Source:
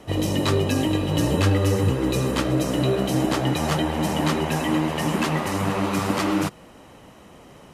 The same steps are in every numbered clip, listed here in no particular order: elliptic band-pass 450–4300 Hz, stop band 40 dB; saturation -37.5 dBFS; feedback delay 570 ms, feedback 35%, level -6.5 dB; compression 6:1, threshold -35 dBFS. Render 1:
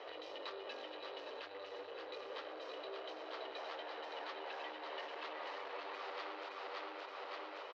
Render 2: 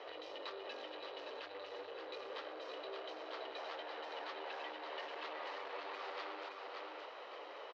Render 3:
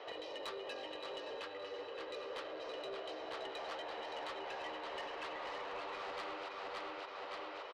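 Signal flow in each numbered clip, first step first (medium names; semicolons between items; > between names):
feedback delay > compression > saturation > elliptic band-pass; compression > feedback delay > saturation > elliptic band-pass; feedback delay > compression > elliptic band-pass > saturation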